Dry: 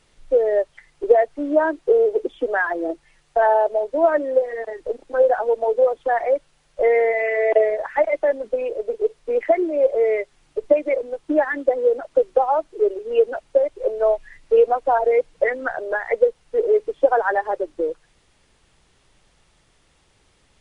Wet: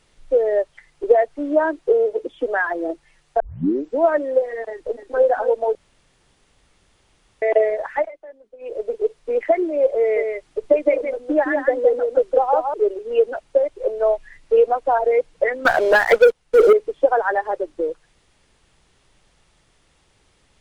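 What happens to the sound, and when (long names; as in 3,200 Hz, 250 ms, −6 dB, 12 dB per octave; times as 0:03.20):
0:01.93–0:02.38: notch comb filter 390 Hz
0:03.40: tape start 0.61 s
0:04.70–0:05.24: delay throw 270 ms, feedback 10%, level −8.5 dB
0:05.75–0:07.42: fill with room tone
0:07.95–0:08.77: duck −21 dB, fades 0.18 s
0:10.00–0:12.74: single-tap delay 163 ms −4.5 dB
0:15.65–0:16.73: leveller curve on the samples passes 3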